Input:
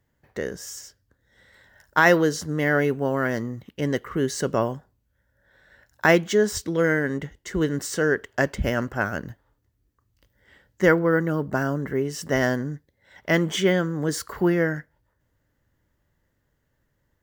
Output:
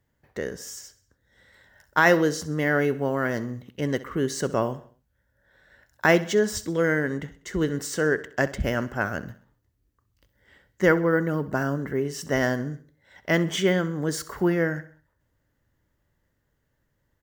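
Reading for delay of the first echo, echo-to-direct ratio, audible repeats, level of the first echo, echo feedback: 65 ms, -16.0 dB, 3, -17.0 dB, 48%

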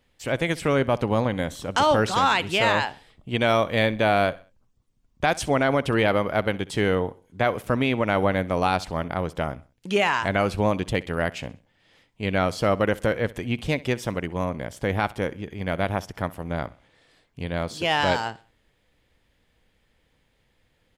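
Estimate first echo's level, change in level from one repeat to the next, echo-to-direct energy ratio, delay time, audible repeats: -20.5 dB, -8.0 dB, -20.0 dB, 64 ms, 2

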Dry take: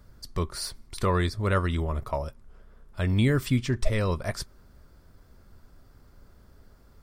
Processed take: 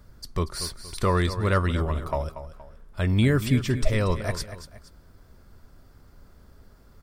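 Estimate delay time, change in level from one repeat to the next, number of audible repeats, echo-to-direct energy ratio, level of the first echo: 235 ms, -8.5 dB, 2, -11.5 dB, -12.0 dB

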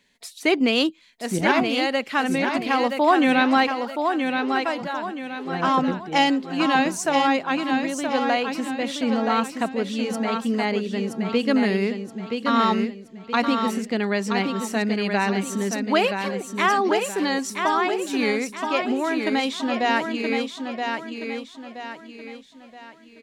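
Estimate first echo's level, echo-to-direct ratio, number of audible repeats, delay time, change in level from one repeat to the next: -5.5 dB, -5.0 dB, 4, 974 ms, -8.0 dB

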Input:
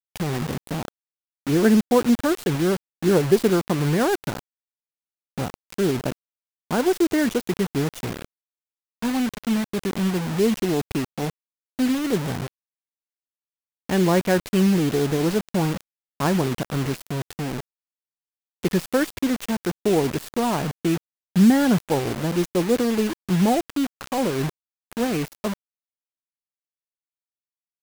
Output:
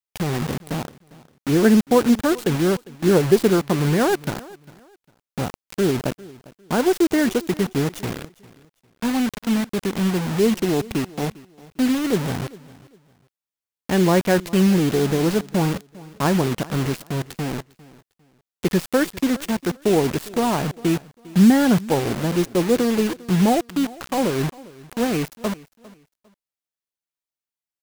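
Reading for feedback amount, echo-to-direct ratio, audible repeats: 27%, -20.5 dB, 2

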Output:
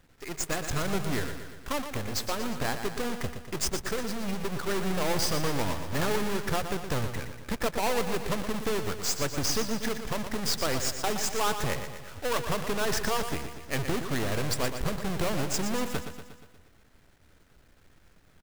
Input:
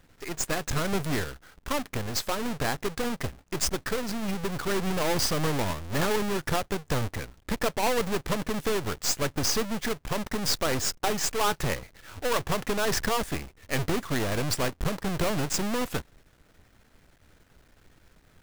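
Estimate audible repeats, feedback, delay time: 6, 57%, 119 ms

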